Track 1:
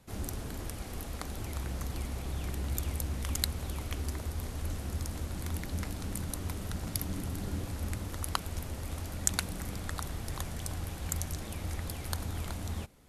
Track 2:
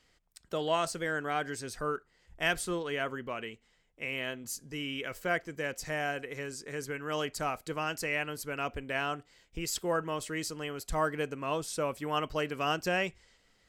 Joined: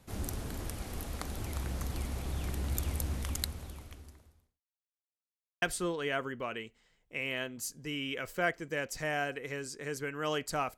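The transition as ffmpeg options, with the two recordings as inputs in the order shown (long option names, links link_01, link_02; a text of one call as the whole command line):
ffmpeg -i cue0.wav -i cue1.wav -filter_complex "[0:a]apad=whole_dur=10.77,atrim=end=10.77,asplit=2[link_01][link_02];[link_01]atrim=end=4.62,asetpts=PTS-STARTPTS,afade=type=out:start_time=3.13:duration=1.49:curve=qua[link_03];[link_02]atrim=start=4.62:end=5.62,asetpts=PTS-STARTPTS,volume=0[link_04];[1:a]atrim=start=2.49:end=7.64,asetpts=PTS-STARTPTS,afade=type=in:duration=0.004:curve=hsin[link_05];[link_03][link_04][link_05]concat=n=3:v=0:a=1" out.wav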